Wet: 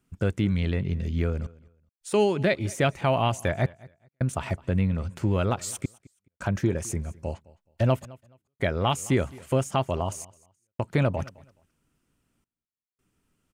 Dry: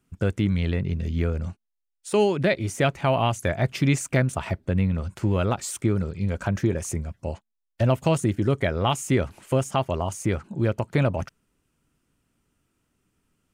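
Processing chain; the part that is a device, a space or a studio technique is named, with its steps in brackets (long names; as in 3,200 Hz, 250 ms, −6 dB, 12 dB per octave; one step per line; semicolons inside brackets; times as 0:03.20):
trance gate with a delay (gate pattern "xxxxxxxx...x" 82 BPM −60 dB; repeating echo 212 ms, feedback 22%, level −22.5 dB)
level −1.5 dB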